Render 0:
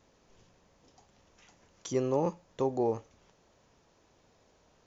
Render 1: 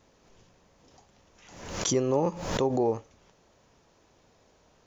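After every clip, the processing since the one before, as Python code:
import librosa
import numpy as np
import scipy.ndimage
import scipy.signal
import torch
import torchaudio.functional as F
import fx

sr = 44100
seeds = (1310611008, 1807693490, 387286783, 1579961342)

y = fx.pre_swell(x, sr, db_per_s=62.0)
y = y * 10.0 ** (3.0 / 20.0)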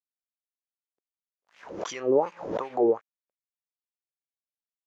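y = np.sign(x) * np.maximum(np.abs(x) - 10.0 ** (-46.5 / 20.0), 0.0)
y = fx.filter_lfo_bandpass(y, sr, shape='sine', hz=2.7, low_hz=340.0, high_hz=2500.0, q=2.8)
y = y * 10.0 ** (9.0 / 20.0)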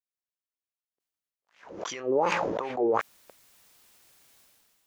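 y = fx.sustainer(x, sr, db_per_s=25.0)
y = y * 10.0 ** (-4.0 / 20.0)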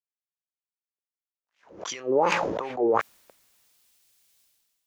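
y = fx.band_widen(x, sr, depth_pct=40)
y = y * 10.0 ** (1.5 / 20.0)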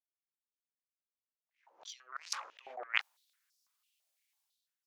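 y = fx.cheby_harmonics(x, sr, harmonics=(3,), levels_db=(-8,), full_scale_db=-8.0)
y = fx.filter_held_highpass(y, sr, hz=6.0, low_hz=640.0, high_hz=5100.0)
y = y * 10.0 ** (-3.5 / 20.0)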